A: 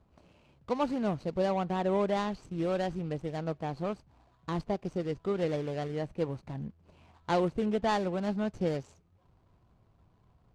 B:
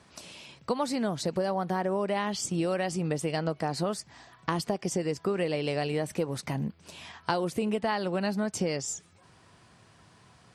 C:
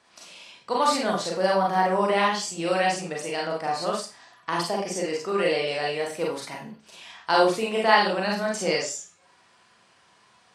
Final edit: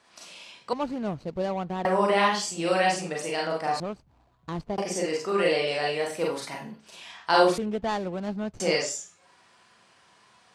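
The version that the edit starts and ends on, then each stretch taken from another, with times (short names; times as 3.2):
C
0.73–1.85 from A
3.8–4.78 from A
7.58–8.6 from A
not used: B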